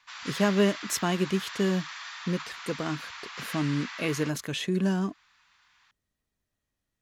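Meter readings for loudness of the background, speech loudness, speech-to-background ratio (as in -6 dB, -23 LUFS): -38.5 LUFS, -29.5 LUFS, 9.0 dB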